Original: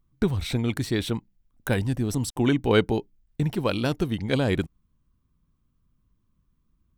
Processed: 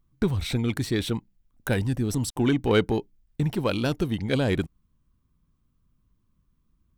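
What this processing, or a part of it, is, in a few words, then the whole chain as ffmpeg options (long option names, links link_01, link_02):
parallel distortion: -filter_complex "[0:a]asplit=2[link_01][link_02];[link_02]asoftclip=type=hard:threshold=-22.5dB,volume=-7.5dB[link_03];[link_01][link_03]amix=inputs=2:normalize=0,volume=-2.5dB"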